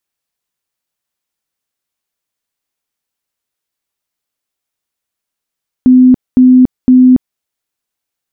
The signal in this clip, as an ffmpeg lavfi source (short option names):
-f lavfi -i "aevalsrc='0.841*sin(2*PI*254*mod(t,0.51))*lt(mod(t,0.51),72/254)':d=1.53:s=44100"